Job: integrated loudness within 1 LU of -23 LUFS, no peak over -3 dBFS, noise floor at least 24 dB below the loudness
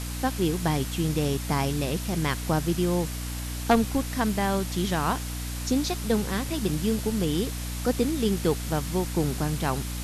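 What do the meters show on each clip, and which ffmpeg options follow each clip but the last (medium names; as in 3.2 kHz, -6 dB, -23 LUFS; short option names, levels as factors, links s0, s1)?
hum 60 Hz; highest harmonic 300 Hz; hum level -31 dBFS; noise floor -33 dBFS; noise floor target -51 dBFS; loudness -27.0 LUFS; peak level -8.0 dBFS; loudness target -23.0 LUFS
-> -af "bandreject=f=60:t=h:w=6,bandreject=f=120:t=h:w=6,bandreject=f=180:t=h:w=6,bandreject=f=240:t=h:w=6,bandreject=f=300:t=h:w=6"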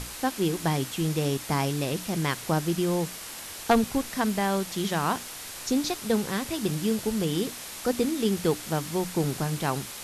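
hum not found; noise floor -40 dBFS; noise floor target -52 dBFS
-> -af "afftdn=nr=12:nf=-40"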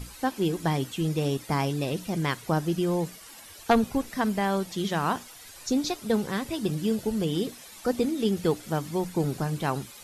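noise floor -47 dBFS; noise floor target -52 dBFS
-> -af "afftdn=nr=6:nf=-47"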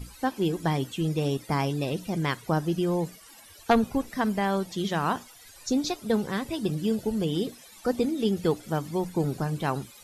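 noise floor -51 dBFS; noise floor target -52 dBFS
-> -af "afftdn=nr=6:nf=-51"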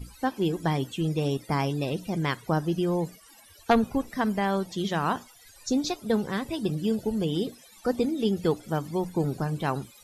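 noise floor -54 dBFS; loudness -28.0 LUFS; peak level -9.0 dBFS; loudness target -23.0 LUFS
-> -af "volume=1.78"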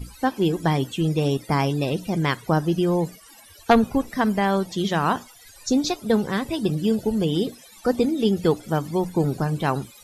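loudness -23.0 LUFS; peak level -4.0 dBFS; noise floor -49 dBFS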